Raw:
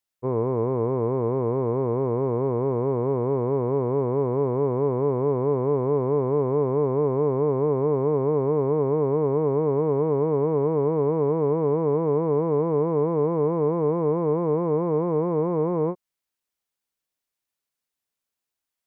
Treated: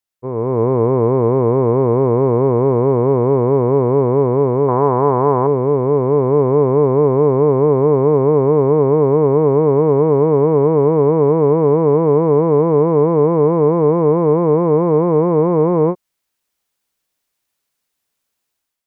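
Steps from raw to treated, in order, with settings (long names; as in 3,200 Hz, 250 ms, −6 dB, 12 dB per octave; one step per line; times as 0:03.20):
0:04.68–0:05.47: flat-topped bell 1,100 Hz +10 dB
automatic gain control gain up to 11 dB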